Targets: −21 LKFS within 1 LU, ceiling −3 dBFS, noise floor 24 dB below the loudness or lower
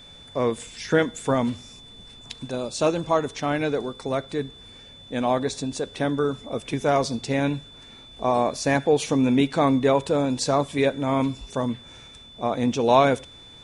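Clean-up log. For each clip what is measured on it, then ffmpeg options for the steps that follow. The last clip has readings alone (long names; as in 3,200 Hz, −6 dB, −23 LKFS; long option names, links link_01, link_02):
interfering tone 3,500 Hz; level of the tone −45 dBFS; integrated loudness −24.0 LKFS; sample peak −4.0 dBFS; target loudness −21.0 LKFS
→ -af "bandreject=frequency=3500:width=30"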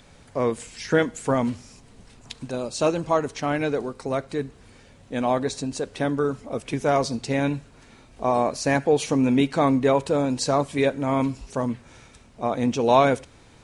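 interfering tone none found; integrated loudness −24.0 LKFS; sample peak −4.0 dBFS; target loudness −21.0 LKFS
→ -af "volume=3dB,alimiter=limit=-3dB:level=0:latency=1"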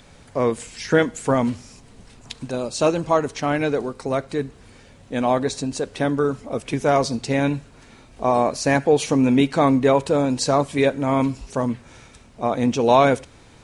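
integrated loudness −21.0 LKFS; sample peak −3.0 dBFS; background noise floor −49 dBFS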